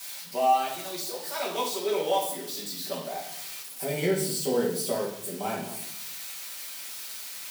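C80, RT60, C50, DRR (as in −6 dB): 9.0 dB, 0.70 s, 5.0 dB, −5.5 dB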